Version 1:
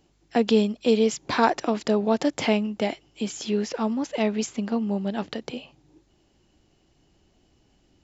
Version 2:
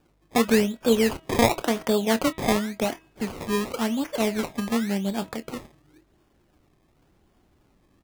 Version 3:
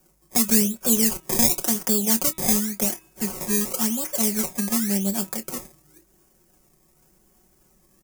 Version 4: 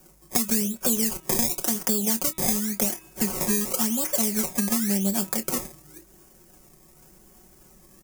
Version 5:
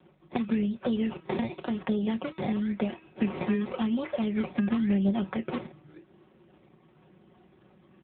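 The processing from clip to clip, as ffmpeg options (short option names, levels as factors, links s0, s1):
-filter_complex "[0:a]acrusher=samples=21:mix=1:aa=0.000001:lfo=1:lforange=21:lforate=0.92,asplit=2[s0][s1];[s1]adelay=26,volume=0.211[s2];[s0][s2]amix=inputs=2:normalize=0,bandreject=f=322:t=h:w=4,bandreject=f=644:t=h:w=4,bandreject=f=966:t=h:w=4,bandreject=f=1288:t=h:w=4,bandreject=f=1610:t=h:w=4,bandreject=f=1932:t=h:w=4,bandreject=f=2254:t=h:w=4,bandreject=f=2576:t=h:w=4,bandreject=f=2898:t=h:w=4,bandreject=f=3220:t=h:w=4,bandreject=f=3542:t=h:w=4,bandreject=f=3864:t=h:w=4"
-filter_complex "[0:a]aecho=1:1:5.4:0.71,acrossover=split=330|3000[s0][s1][s2];[s1]acompressor=threshold=0.0355:ratio=6[s3];[s0][s3][s2]amix=inputs=3:normalize=0,aexciter=amount=3.1:drive=9.4:freq=5400,volume=0.794"
-af "acompressor=threshold=0.0398:ratio=5,volume=2.24"
-ar 8000 -c:a libopencore_amrnb -b:a 7950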